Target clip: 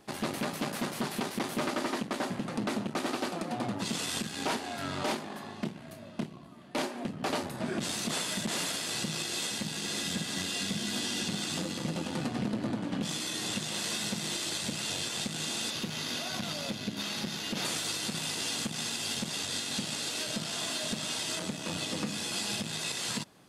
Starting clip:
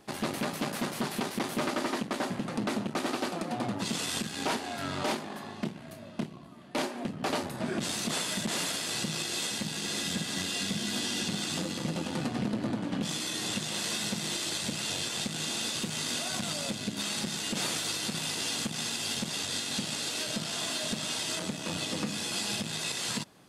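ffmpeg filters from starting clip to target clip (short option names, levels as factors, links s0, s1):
-filter_complex "[0:a]asettb=1/sr,asplit=3[s0][s1][s2];[s0]atrim=end=15.704[s3];[s1]atrim=start=15.7:end=17.65,asetpts=PTS-STARTPTS,afade=t=in:d=0.004:c=qsin,afade=t=out:st=1.946:d=0.004:c=qsin,equalizer=f=8300:t=o:w=0.38:g=-13.5[s4];[s2]atrim=start=17.646[s5];[s3][s4]acrossfade=d=0.004:c1=hsin:c2=qsin[s6];[s6][s5]acrossfade=d=0.004:c1=qsin:c2=hsin,volume=0.891"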